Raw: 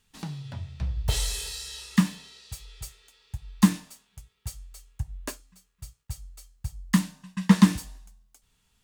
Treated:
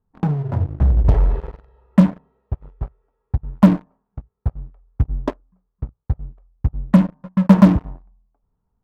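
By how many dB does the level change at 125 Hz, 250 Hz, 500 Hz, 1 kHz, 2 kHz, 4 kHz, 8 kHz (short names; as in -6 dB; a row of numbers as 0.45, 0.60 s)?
+11.0 dB, +8.5 dB, +17.0 dB, +8.5 dB, 0.0 dB, n/a, under -15 dB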